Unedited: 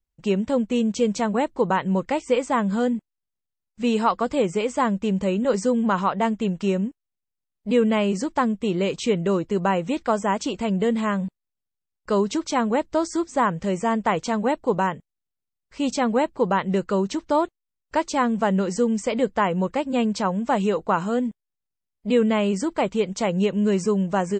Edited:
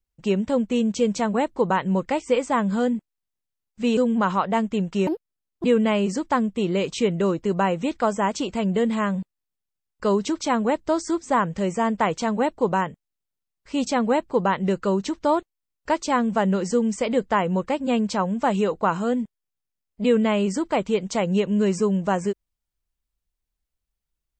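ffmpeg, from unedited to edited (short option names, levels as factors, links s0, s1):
-filter_complex "[0:a]asplit=4[s0][s1][s2][s3];[s0]atrim=end=3.972[s4];[s1]atrim=start=5.648:end=6.754[s5];[s2]atrim=start=6.75:end=7.7,asetpts=PTS-STARTPTS,asetrate=73206,aresample=44100[s6];[s3]atrim=start=7.696[s7];[s4][s5]acrossfade=d=0.004:c1=hsin:c2=hsin[s8];[s8][s6]acrossfade=d=0.004:c1=hsin:c2=hsin[s9];[s9][s7]acrossfade=d=0.004:c1=hsin:c2=hsin"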